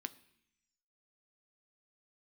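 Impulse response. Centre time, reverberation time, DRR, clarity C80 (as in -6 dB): 3 ms, 0.70 s, 11.0 dB, 21.0 dB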